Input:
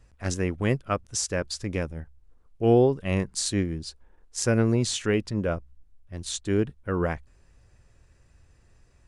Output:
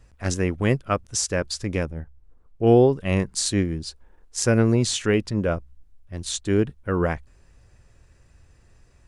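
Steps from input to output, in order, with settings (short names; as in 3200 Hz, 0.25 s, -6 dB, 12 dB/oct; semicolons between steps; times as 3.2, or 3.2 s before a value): 1.85–2.67 high shelf 2400 Hz -9 dB; gain +3.5 dB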